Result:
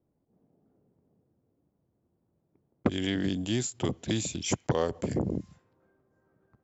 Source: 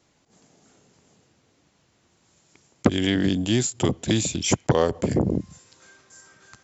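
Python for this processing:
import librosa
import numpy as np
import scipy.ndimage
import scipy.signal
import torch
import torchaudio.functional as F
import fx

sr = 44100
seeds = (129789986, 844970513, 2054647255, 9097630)

y = fx.env_lowpass(x, sr, base_hz=490.0, full_db=-21.0)
y = y * librosa.db_to_amplitude(-7.5)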